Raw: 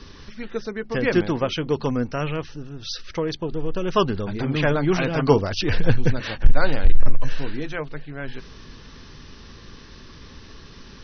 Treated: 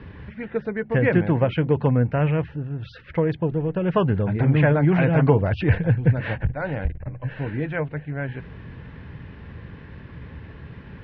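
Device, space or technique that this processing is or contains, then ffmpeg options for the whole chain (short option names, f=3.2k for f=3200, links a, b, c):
bass amplifier: -af "acompressor=threshold=-17dB:ratio=4,highpass=61,equalizer=f=77:t=q:w=4:g=7,equalizer=f=120:t=q:w=4:g=7,equalizer=f=170:t=q:w=4:g=4,equalizer=f=240:t=q:w=4:g=-4,equalizer=f=370:t=q:w=4:g=-5,equalizer=f=1.2k:t=q:w=4:g=-10,lowpass=f=2.2k:w=0.5412,lowpass=f=2.2k:w=1.3066,volume=4.5dB"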